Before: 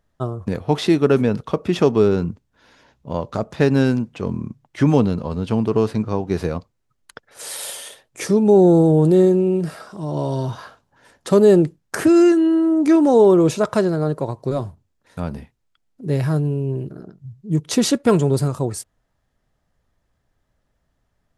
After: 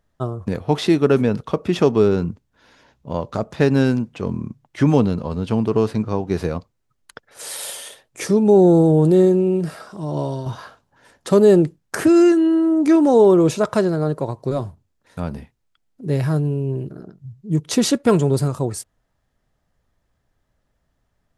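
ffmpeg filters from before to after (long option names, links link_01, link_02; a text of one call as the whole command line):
ffmpeg -i in.wav -filter_complex "[0:a]asplit=2[link_01][link_02];[link_01]atrim=end=10.46,asetpts=PTS-STARTPTS,afade=type=out:start_time=10.2:duration=0.26:silence=0.421697[link_03];[link_02]atrim=start=10.46,asetpts=PTS-STARTPTS,afade=type=in:duration=0.004:curve=hsin:silence=0.421697[link_04];[link_03][link_04]concat=n=2:v=0:a=1" out.wav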